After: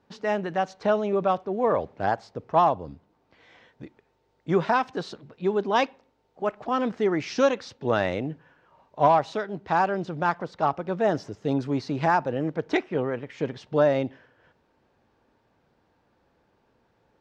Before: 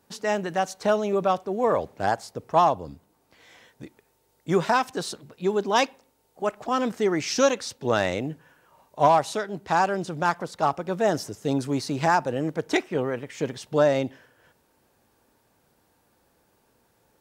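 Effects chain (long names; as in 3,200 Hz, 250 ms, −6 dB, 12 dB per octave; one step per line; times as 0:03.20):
high-frequency loss of the air 190 metres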